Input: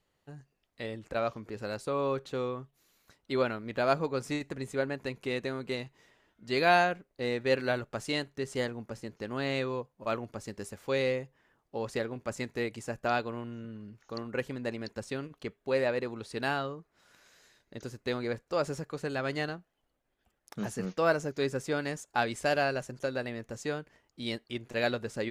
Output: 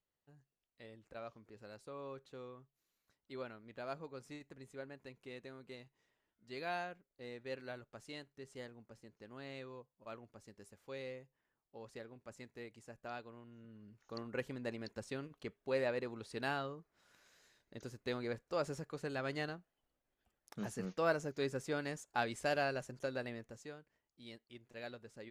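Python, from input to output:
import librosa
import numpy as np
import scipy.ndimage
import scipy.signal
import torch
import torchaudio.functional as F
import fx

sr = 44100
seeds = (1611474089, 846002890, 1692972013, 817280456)

y = fx.gain(x, sr, db=fx.line((13.45, -17.0), (14.17, -7.0), (23.33, -7.0), (23.77, -18.0)))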